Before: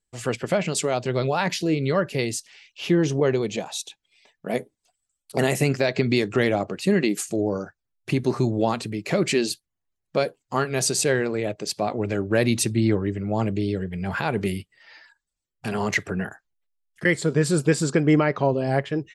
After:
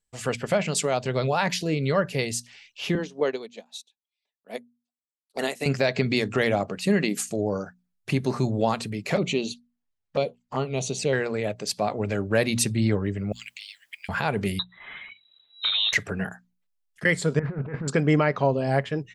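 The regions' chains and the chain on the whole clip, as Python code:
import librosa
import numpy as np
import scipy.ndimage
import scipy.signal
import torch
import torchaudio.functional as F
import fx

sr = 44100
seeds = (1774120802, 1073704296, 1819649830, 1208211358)

y = fx.chain(x, sr, fx.highpass(hz=220.0, slope=24),
    fx.peak_eq(hz=3900.0, db=6.5, octaves=0.5),
    fx.upward_expand(threshold_db=-37.0, expansion=2.5), at=(2.95, 5.66))
y = fx.chain(y, sr, fx.lowpass(hz=5300.0, slope=12),
    fx.env_flanger(rest_ms=10.9, full_db=-22.5), at=(9.16, 11.13))
y = fx.chain(y, sr, fx.steep_highpass(hz=2200.0, slope=36),
    fx.transient(attack_db=8, sustain_db=-2),
    fx.quant_dither(seeds[0], bits=12, dither='triangular'), at=(13.32, 14.09))
y = fx.chain(y, sr, fx.low_shelf(hz=260.0, db=6.5),
    fx.freq_invert(carrier_hz=3900),
    fx.band_squash(depth_pct=70), at=(14.59, 15.93))
y = fx.chain(y, sr, fx.self_delay(depth_ms=0.12),
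    fx.cheby1_lowpass(hz=2100.0, order=4),
    fx.over_compress(threshold_db=-29.0, ratio=-1.0), at=(17.39, 17.88))
y = fx.peak_eq(y, sr, hz=340.0, db=-8.0, octaves=0.34)
y = fx.hum_notches(y, sr, base_hz=60, count=4)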